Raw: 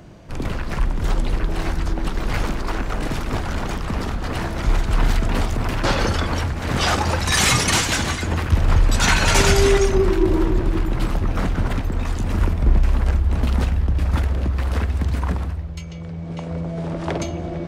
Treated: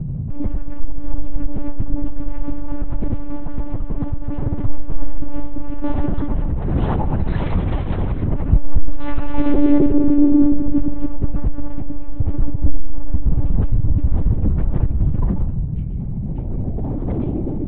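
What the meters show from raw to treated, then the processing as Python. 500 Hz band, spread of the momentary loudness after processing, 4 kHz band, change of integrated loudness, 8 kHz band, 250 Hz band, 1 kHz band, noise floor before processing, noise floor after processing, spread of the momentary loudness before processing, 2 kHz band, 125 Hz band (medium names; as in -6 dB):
-6.0 dB, 14 LU, under -20 dB, -1.0 dB, under -40 dB, +5.5 dB, -8.5 dB, -30 dBFS, -23 dBFS, 11 LU, -18.0 dB, 0.0 dB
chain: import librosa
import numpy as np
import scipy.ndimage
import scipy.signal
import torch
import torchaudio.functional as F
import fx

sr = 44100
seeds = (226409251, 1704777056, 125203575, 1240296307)

y = fx.tilt_eq(x, sr, slope=-4.5)
y = fx.dmg_buzz(y, sr, base_hz=60.0, harmonics=3, level_db=-12.0, tilt_db=-3, odd_only=False)
y = fx.small_body(y, sr, hz=(330.0, 810.0), ring_ms=25, db=11)
y = fx.lpc_monotone(y, sr, seeds[0], pitch_hz=290.0, order=8)
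y = F.gain(torch.from_numpy(y), -13.0).numpy()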